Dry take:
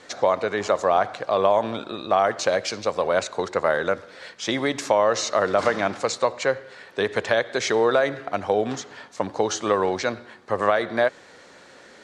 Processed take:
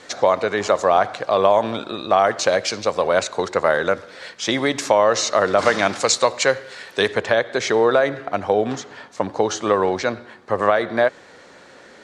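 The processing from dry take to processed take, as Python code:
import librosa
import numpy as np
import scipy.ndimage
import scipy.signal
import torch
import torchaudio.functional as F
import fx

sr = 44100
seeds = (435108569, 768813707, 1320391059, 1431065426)

y = fx.high_shelf(x, sr, hz=2700.0, db=fx.steps((0.0, 2.0), (5.66, 10.0), (7.11, -3.5)))
y = y * 10.0 ** (3.5 / 20.0)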